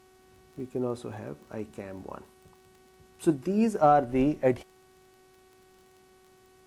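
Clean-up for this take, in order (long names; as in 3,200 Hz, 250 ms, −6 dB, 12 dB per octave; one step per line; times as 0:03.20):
click removal
hum removal 374 Hz, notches 38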